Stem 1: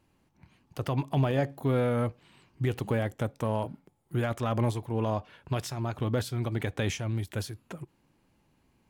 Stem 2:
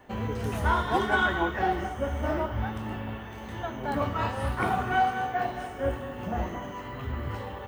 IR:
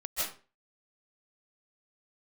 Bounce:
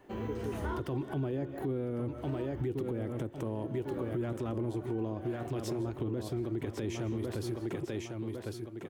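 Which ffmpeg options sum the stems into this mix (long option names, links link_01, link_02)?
-filter_complex "[0:a]volume=-2.5dB,asplit=4[link_01][link_02][link_03][link_04];[link_02]volume=-22.5dB[link_05];[link_03]volume=-8dB[link_06];[1:a]volume=-8.5dB[link_07];[link_04]apad=whole_len=338373[link_08];[link_07][link_08]sidechaincompress=threshold=-38dB:ratio=6:attack=32:release=1100[link_09];[2:a]atrim=start_sample=2205[link_10];[link_05][link_10]afir=irnorm=-1:irlink=0[link_11];[link_06]aecho=0:1:1103|2206|3309|4412|5515:1|0.37|0.137|0.0507|0.0187[link_12];[link_01][link_09][link_11][link_12]amix=inputs=4:normalize=0,equalizer=frequency=350:width=2.3:gain=14,acrossover=split=400[link_13][link_14];[link_14]acompressor=threshold=-37dB:ratio=3[link_15];[link_13][link_15]amix=inputs=2:normalize=0,alimiter=level_in=2dB:limit=-24dB:level=0:latency=1:release=122,volume=-2dB"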